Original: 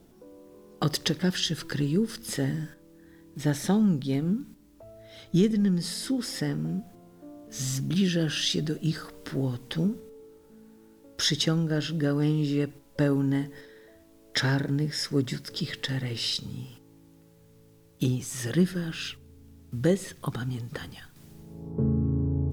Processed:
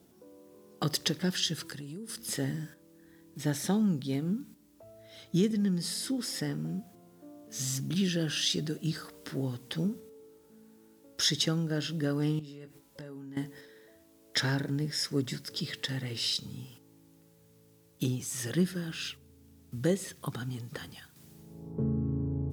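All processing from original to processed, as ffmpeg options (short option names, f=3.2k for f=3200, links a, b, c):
-filter_complex "[0:a]asettb=1/sr,asplit=3[a][b][c];[a]atrim=end=1.664[d];[b]atrim=start=1.66:end=2.17,asetpts=PTS-STARTPTS,afade=t=in:d=0.004:c=qsin,afade=t=out:st=0.506:d=0.004:c=qsin,equalizer=f=9.5k:t=o:w=0.68:g=8.5,acompressor=threshold=-33dB:ratio=12:attack=3.2:release=140:knee=1:detection=peak[e];[c]atrim=start=2.166[f];[d][e]acrossfade=d=0.004:c1=hsin:c2=qsin[g];[g][f]acrossfade=d=0.004:c1=qsin:c2=hsin,asettb=1/sr,asplit=3[h][i][j];[h]atrim=end=12.394[k];[i]atrim=start=12.39:end=13.37,asetpts=PTS-STARTPTS,afade=t=in:d=0.004:c=qsin,afade=t=out:st=0.976:d=0.004:c=qsin,acompressor=threshold=-40dB:ratio=4:attack=3.2:release=140:knee=1:detection=peak,asplit=2[l][m];[m]adelay=19,volume=-8dB[n];[l][n]amix=inputs=2:normalize=0,atrim=end_sample=43218[o];[j]atrim=start=13.366[p];[k][o]acrossfade=d=0.004:c1=hsin:c2=qsin[q];[q][p]acrossfade=d=0.004:c1=qsin:c2=hsin,highpass=85,highshelf=f=4.3k:g=5.5,volume=-4.5dB"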